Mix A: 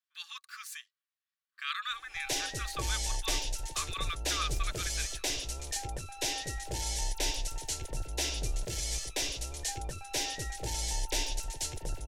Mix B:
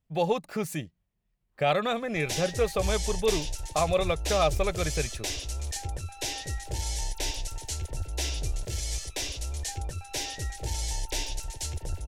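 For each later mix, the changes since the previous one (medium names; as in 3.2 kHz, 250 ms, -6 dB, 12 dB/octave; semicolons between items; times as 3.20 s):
speech: remove rippled Chebyshev high-pass 1.1 kHz, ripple 6 dB; background: add peaking EQ 79 Hz +13 dB 0.72 oct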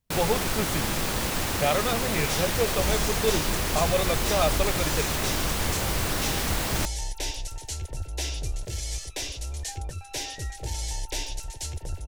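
first sound: unmuted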